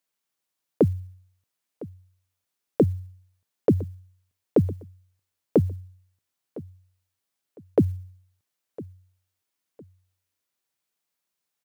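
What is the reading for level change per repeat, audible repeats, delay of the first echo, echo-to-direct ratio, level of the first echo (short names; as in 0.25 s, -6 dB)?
-11.0 dB, 2, 1.007 s, -18.0 dB, -18.5 dB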